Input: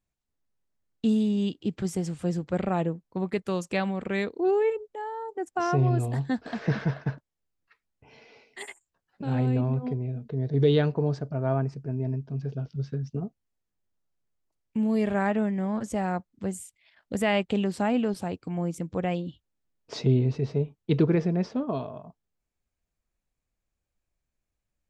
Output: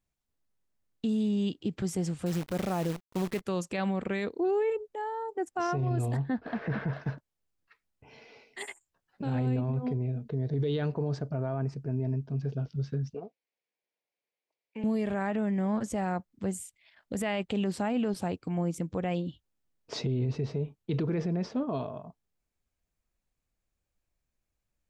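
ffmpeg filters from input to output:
ffmpeg -i in.wav -filter_complex "[0:a]asettb=1/sr,asplit=3[link_01][link_02][link_03];[link_01]atrim=end=2.264[link_04];[link_02]atrim=start=2.26:end=3.41,asetpts=PTS-STARTPTS,afade=type=in:duration=0.004:curve=qsin,afade=type=out:start_time=1.146:duration=0.004:curve=qsin,acrusher=bits=7:dc=4:mix=0:aa=0.000001[link_05];[link_03]atrim=start=3.406[link_06];[link_04][link_05]acrossfade=duration=0.004:curve1=hsin:curve2=qsin[link_07];[link_07][link_06]acrossfade=duration=0.004:curve1=qsin:curve2=hsin,asplit=3[link_08][link_09][link_10];[link_08]afade=type=out:start_time=6.16:duration=0.02[link_11];[link_09]lowpass=2300,afade=type=in:start_time=6.16:duration=0.02,afade=type=out:start_time=6.92:duration=0.02[link_12];[link_10]afade=type=in:start_time=6.92:duration=0.02[link_13];[link_11][link_12][link_13]amix=inputs=3:normalize=0,asettb=1/sr,asplit=3[link_14][link_15][link_16];[link_14]atrim=end=13.144[link_17];[link_15]atrim=start=13.14:end=14.84,asetpts=PTS-STARTPTS,afade=type=in:duration=0.004:curve=qsin,afade=type=out:start_time=1.696:duration=0.004:curve=qsin,highpass=470,equalizer=frequency=490:width_type=q:width=4:gain=7,equalizer=frequency=1300:width_type=q:width=4:gain=-10,equalizer=frequency=2300:width_type=q:width=4:gain=9,lowpass=frequency=5300:width=0.5412,lowpass=frequency=5300:width=1.3066[link_18];[link_16]atrim=start=14.836[link_19];[link_17][link_18]acrossfade=duration=0.004:curve1=hsin:curve2=qsin[link_20];[link_20][link_19]acrossfade=duration=0.004:curve1=qsin:curve2=hsin,alimiter=limit=-22.5dB:level=0:latency=1:release=33" out.wav

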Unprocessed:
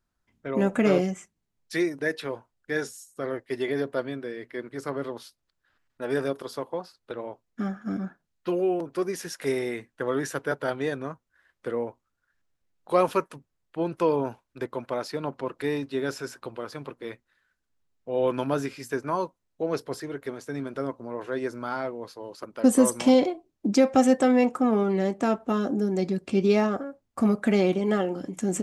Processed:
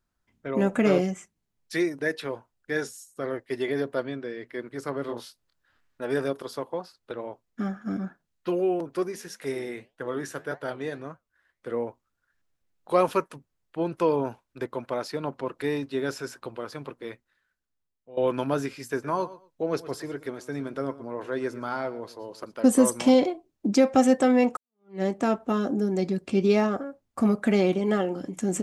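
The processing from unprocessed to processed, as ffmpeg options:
ffmpeg -i in.wav -filter_complex "[0:a]asettb=1/sr,asplit=3[link_01][link_02][link_03];[link_01]atrim=end=4.034[link_04];[link_02]atrim=start=4.03:end=4.46,asetpts=PTS-STARTPTS,afade=type=in:duration=0.004:curve=qsin,afade=type=out:start_time=0.426:duration=0.004:curve=qsin,lowpass=frequency=7400:width=0.5412,lowpass=frequency=7400:width=1.3066[link_05];[link_03]atrim=start=4.456[link_06];[link_04][link_05]acrossfade=duration=0.004:curve1=hsin:curve2=qsin[link_07];[link_07][link_06]acrossfade=duration=0.004:curve1=qsin:curve2=hsin,asettb=1/sr,asplit=3[link_08][link_09][link_10];[link_08]atrim=end=5.064[link_11];[link_09]atrim=start=5.06:end=6.02,asetpts=PTS-STARTPTS,afade=type=in:duration=0.004:curve=qsin,afade=type=out:start_time=0.956:duration=0.004:curve=qsin,asplit=2[link_12][link_13];[link_13]adelay=26,volume=-2.5dB[link_14];[link_12][link_14]amix=inputs=2:normalize=0,atrim=end_sample=42336[link_15];[link_10]atrim=start=6.016[link_16];[link_11][link_15]acrossfade=duration=0.004:curve1=hsin:curve2=qsin[link_17];[link_17][link_16]acrossfade=duration=0.004:curve1=qsin:curve2=hsin,asplit=3[link_18][link_19][link_20];[link_18]afade=type=out:start_time=9.07:duration=0.02[link_21];[link_19]flanger=delay=5.9:depth=7.2:regen=-79:speed=1.7:shape=triangular,afade=type=in:start_time=9.07:duration=0.02,afade=type=out:start_time=11.7:duration=0.02[link_22];[link_20]afade=type=in:start_time=11.7:duration=0.02[link_23];[link_21][link_22][link_23]amix=inputs=3:normalize=0,asettb=1/sr,asplit=3[link_24][link_25][link_26];[link_24]atrim=end=18.834[link_27];[link_25]atrim=start=18.83:end=22.54,asetpts=PTS-STARTPTS,afade=type=in:duration=0.004:curve=qsin,afade=type=out:start_time=3.706:duration=0.004:curve=qsin,aecho=1:1:116|232:0.15|0.0284,atrim=end_sample=163611[link_28];[link_26]atrim=start=22.536[link_29];[link_27][link_28]acrossfade=duration=0.004:curve1=hsin:curve2=qsin[link_30];[link_30][link_29]acrossfade=duration=0.004:curve1=qsin:curve2=hsin,asplit=3[link_31][link_32][link_33];[link_31]atrim=end=18.17,asetpts=PTS-STARTPTS,afade=type=out:start_time=16.95:duration=1.22:silence=0.149624[link_34];[link_32]atrim=start=18.17:end=24.57,asetpts=PTS-STARTPTS,afade=type=in:duration=0.004:curve=hsin:silence=0.149624,afade=type=out:start_time=6.396:duration=0.004:curve=hsin[link_35];[link_33]atrim=start=24.57,asetpts=PTS-STARTPTS,afade=type=in:duration=0.45:curve=exp[link_36];[link_34][link_35][link_36]concat=n=3:v=0:a=1" out.wav

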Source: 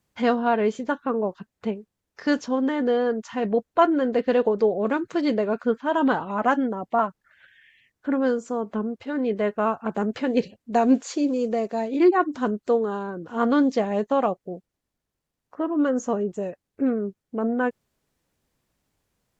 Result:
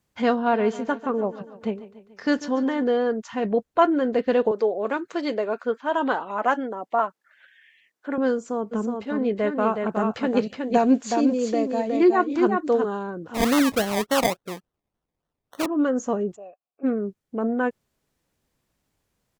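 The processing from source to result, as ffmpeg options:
ffmpeg -i in.wav -filter_complex "[0:a]asplit=3[link_01][link_02][link_03];[link_01]afade=type=out:start_time=0.47:duration=0.02[link_04];[link_02]aecho=1:1:144|288|432|576|720:0.168|0.094|0.0526|0.0295|0.0165,afade=type=in:start_time=0.47:duration=0.02,afade=type=out:start_time=2.82:duration=0.02[link_05];[link_03]afade=type=in:start_time=2.82:duration=0.02[link_06];[link_04][link_05][link_06]amix=inputs=3:normalize=0,asettb=1/sr,asplit=3[link_07][link_08][link_09];[link_07]atrim=end=4.514[link_10];[link_08]atrim=start=4.51:end=8.18,asetpts=PTS-STARTPTS,afade=type=in:duration=0.004:curve=qsin,afade=type=out:start_time=3.666:duration=0.004:curve=qsin,highpass=360[link_11];[link_09]atrim=start=8.176[link_12];[link_10][link_11]acrossfade=duration=0.004:curve1=hsin:curve2=qsin[link_13];[link_13][link_12]acrossfade=duration=0.004:curve1=qsin:curve2=hsin,asplit=3[link_14][link_15][link_16];[link_14]afade=type=out:start_time=8.71:duration=0.02[link_17];[link_15]aecho=1:1:367:0.596,afade=type=in:start_time=8.71:duration=0.02,afade=type=out:start_time=12.84:duration=0.02[link_18];[link_16]afade=type=in:start_time=12.84:duration=0.02[link_19];[link_17][link_18][link_19]amix=inputs=3:normalize=0,asettb=1/sr,asplit=3[link_20][link_21][link_22];[link_20]atrim=end=13.344[link_23];[link_21]atrim=start=13.34:end=15.66,asetpts=PTS-STARTPTS,afade=type=in:duration=0.004:curve=qsin,afade=type=out:start_time=2.316:duration=0.004:curve=qsin,acrusher=samples=25:mix=1:aa=0.000001:lfo=1:lforange=15:lforate=3.5[link_24];[link_22]atrim=start=15.656[link_25];[link_23][link_24]acrossfade=duration=0.004:curve1=hsin:curve2=qsin[link_26];[link_26][link_25]acrossfade=duration=0.004:curve1=qsin:curve2=hsin,asplit=3[link_27][link_28][link_29];[link_27]afade=type=out:start_time=16.35:duration=0.02[link_30];[link_28]asplit=3[link_31][link_32][link_33];[link_31]bandpass=frequency=730:width_type=q:width=8,volume=0dB[link_34];[link_32]bandpass=frequency=1090:width_type=q:width=8,volume=-6dB[link_35];[link_33]bandpass=frequency=2440:width_type=q:width=8,volume=-9dB[link_36];[link_34][link_35][link_36]amix=inputs=3:normalize=0,afade=type=in:start_time=16.35:duration=0.02,afade=type=out:start_time=16.83:duration=0.02[link_37];[link_29]afade=type=in:start_time=16.83:duration=0.02[link_38];[link_30][link_37][link_38]amix=inputs=3:normalize=0" out.wav

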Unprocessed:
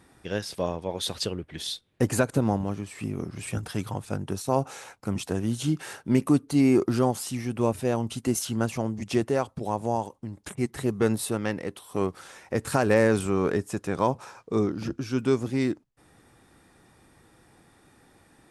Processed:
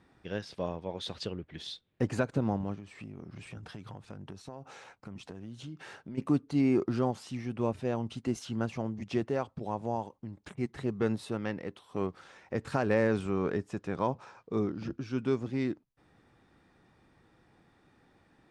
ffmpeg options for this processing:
ffmpeg -i in.wav -filter_complex "[0:a]asplit=3[link_01][link_02][link_03];[link_01]afade=type=out:start_time=2.75:duration=0.02[link_04];[link_02]acompressor=threshold=-34dB:ratio=6:attack=3.2:release=140:knee=1:detection=peak,afade=type=in:start_time=2.75:duration=0.02,afade=type=out:start_time=6.17:duration=0.02[link_05];[link_03]afade=type=in:start_time=6.17:duration=0.02[link_06];[link_04][link_05][link_06]amix=inputs=3:normalize=0,lowpass=4400,equalizer=frequency=180:width_type=o:width=0.77:gain=2,volume=-6.5dB" out.wav

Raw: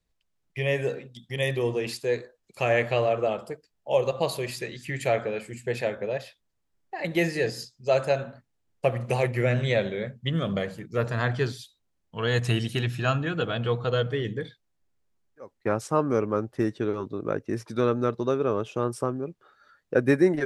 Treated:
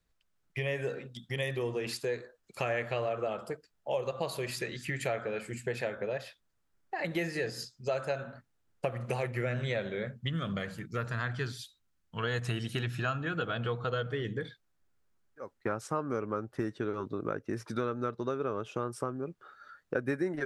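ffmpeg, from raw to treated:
ffmpeg -i in.wav -filter_complex "[0:a]asettb=1/sr,asplit=3[link_01][link_02][link_03];[link_01]atrim=end=10.264[link_04];[link_02]atrim=start=10.26:end=12.24,asetpts=PTS-STARTPTS,afade=type=in:duration=0.004:curve=qsin,afade=type=out:start_time=1.976:duration=0.004:curve=qsin,equalizer=frequency=540:width_type=o:width=1.9:gain=-6.5[link_05];[link_03]atrim=start=12.236[link_06];[link_04][link_05]acrossfade=duration=0.004:curve1=hsin:curve2=qsin[link_07];[link_07][link_06]acrossfade=duration=0.004:curve1=qsin:curve2=hsin,equalizer=frequency=1400:width_type=o:width=0.58:gain=6.5,acompressor=threshold=-32dB:ratio=3" out.wav

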